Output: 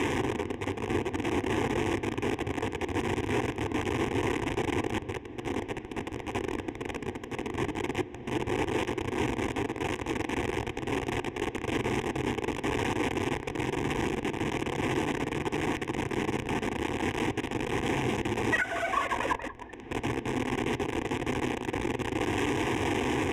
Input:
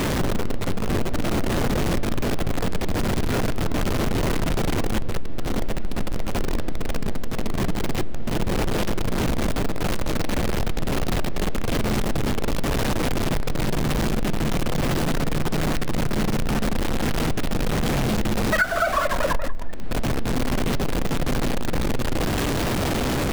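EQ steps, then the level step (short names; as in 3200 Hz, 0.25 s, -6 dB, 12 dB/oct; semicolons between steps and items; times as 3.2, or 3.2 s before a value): Chebyshev band-pass 120–5700 Hz, order 2; fixed phaser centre 900 Hz, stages 8; 0.0 dB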